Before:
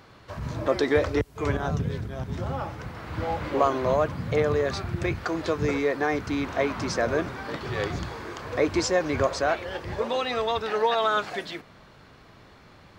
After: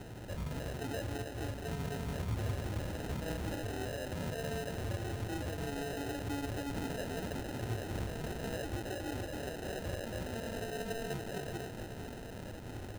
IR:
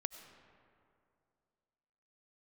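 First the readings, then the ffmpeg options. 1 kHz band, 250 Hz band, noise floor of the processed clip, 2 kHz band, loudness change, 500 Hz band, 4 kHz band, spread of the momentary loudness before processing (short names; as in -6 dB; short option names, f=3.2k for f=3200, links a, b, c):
-16.0 dB, -10.0 dB, -45 dBFS, -13.0 dB, -12.5 dB, -15.0 dB, -11.0 dB, 11 LU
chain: -filter_complex "[0:a]acompressor=threshold=-27dB:ratio=6,asplit=2[a][b];[b]aeval=exprs='0.0119*(abs(mod(val(0)/0.0119+3,4)-2)-1)':c=same,volume=-6dB[c];[a][c]amix=inputs=2:normalize=0,alimiter=level_in=7.5dB:limit=-24dB:level=0:latency=1:release=383,volume=-7.5dB,acrossover=split=190[d][e];[e]asoftclip=type=tanh:threshold=-39dB[f];[d][f]amix=inputs=2:normalize=0,aecho=1:1:280|462|580.3|657.2|707.2:0.631|0.398|0.251|0.158|0.1,flanger=delay=3:depth=1.6:regen=-40:speed=0.78:shape=sinusoidal,acrusher=samples=39:mix=1:aa=0.000001,equalizer=f=110:t=o:w=0.28:g=6.5,bandreject=f=4.9k:w=26,volume=5.5dB"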